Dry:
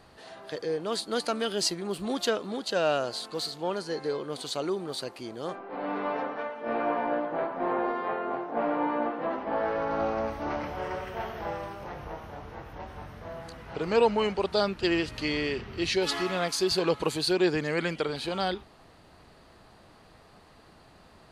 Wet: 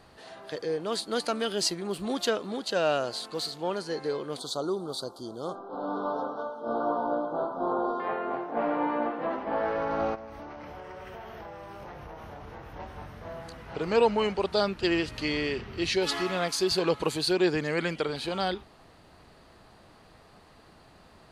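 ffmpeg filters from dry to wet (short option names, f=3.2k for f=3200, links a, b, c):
-filter_complex "[0:a]asettb=1/sr,asplit=3[a][b][c];[a]atrim=end=4.394[d];[b]atrim=start=4.39:end=8,asetpts=PTS-STARTPTS,afade=t=in:d=0.004:c=qsin,afade=t=out:st=3.606:d=0.004:c=qsin,asuperstop=centerf=2200:order=12:qfactor=1.2[e];[c]atrim=start=7.996[f];[d][e]acrossfade=d=0.004:c1=hsin:c2=qsin[g];[g][f]acrossfade=d=0.004:c1=qsin:c2=hsin,asplit=3[h][i][j];[h]afade=t=out:st=10.14:d=0.02[k];[i]acompressor=threshold=-38dB:ratio=16:attack=3.2:release=140:knee=1:detection=peak,afade=t=in:st=10.14:d=0.02,afade=t=out:st=12.72:d=0.02[l];[j]afade=t=in:st=12.72:d=0.02[m];[k][l][m]amix=inputs=3:normalize=0"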